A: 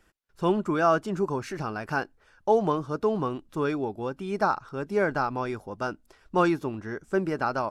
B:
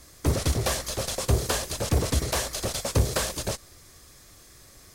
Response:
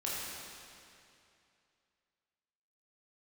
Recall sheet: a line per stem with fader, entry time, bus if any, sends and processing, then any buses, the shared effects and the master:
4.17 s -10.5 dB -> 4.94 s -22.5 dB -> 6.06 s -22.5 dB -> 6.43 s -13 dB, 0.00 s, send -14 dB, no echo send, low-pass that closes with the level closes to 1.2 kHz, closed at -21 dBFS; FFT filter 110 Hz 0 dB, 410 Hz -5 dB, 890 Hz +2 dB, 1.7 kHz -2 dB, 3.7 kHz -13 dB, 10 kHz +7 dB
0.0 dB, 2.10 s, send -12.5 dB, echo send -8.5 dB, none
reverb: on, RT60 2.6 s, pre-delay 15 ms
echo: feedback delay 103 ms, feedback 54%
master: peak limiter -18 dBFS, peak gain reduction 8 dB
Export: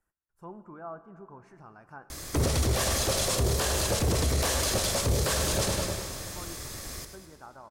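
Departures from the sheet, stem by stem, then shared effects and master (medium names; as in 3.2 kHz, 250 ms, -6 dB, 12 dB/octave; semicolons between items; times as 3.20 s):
stem A -10.5 dB -> -18.5 dB; stem B 0.0 dB -> +9.5 dB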